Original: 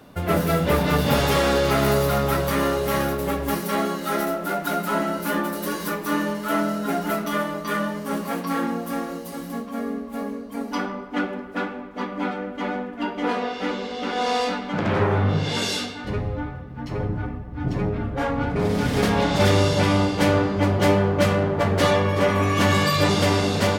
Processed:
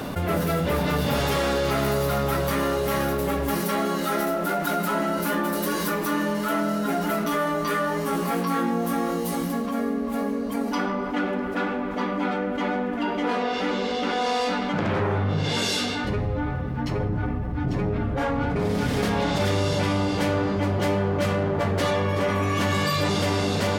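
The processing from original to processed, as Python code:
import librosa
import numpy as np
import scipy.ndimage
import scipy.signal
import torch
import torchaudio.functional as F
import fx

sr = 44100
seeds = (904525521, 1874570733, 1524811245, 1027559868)

y = fx.doubler(x, sr, ms=17.0, db=-3.5, at=(7.24, 9.48))
y = fx.env_flatten(y, sr, amount_pct=70)
y = y * librosa.db_to_amplitude(-6.5)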